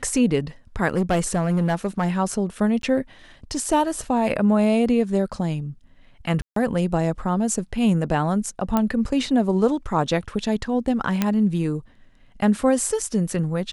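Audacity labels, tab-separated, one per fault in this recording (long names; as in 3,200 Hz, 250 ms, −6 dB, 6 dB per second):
0.880000	2.180000	clipping −15.5 dBFS
2.820000	2.830000	drop-out
6.420000	6.560000	drop-out 143 ms
8.770000	8.770000	click −8 dBFS
11.220000	11.220000	click −6 dBFS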